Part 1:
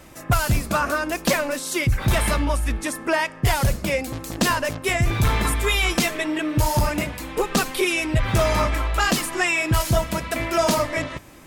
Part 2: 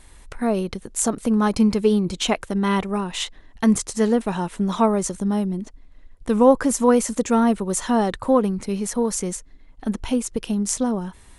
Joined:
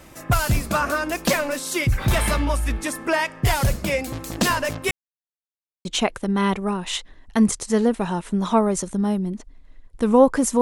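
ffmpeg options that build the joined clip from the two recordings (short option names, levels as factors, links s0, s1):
-filter_complex "[0:a]apad=whole_dur=10.61,atrim=end=10.61,asplit=2[s0][s1];[s0]atrim=end=4.91,asetpts=PTS-STARTPTS,afade=t=out:st=4.906:d=0.004:c=hsin[s2];[s1]atrim=start=4.91:end=5.85,asetpts=PTS-STARTPTS,volume=0[s3];[1:a]atrim=start=2.12:end=6.88,asetpts=PTS-STARTPTS,afade=t=in:d=0.004:c=hsin[s4];[s2][s3][s4]concat=n=3:v=0:a=1"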